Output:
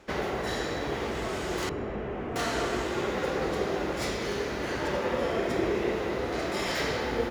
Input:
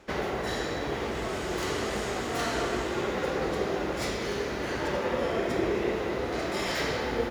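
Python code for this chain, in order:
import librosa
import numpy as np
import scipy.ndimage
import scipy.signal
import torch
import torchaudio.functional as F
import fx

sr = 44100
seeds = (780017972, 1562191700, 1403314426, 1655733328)

p1 = fx.delta_mod(x, sr, bps=16000, step_db=-45.5, at=(1.69, 2.36))
y = p1 + fx.echo_single(p1, sr, ms=1171, db=-22.0, dry=0)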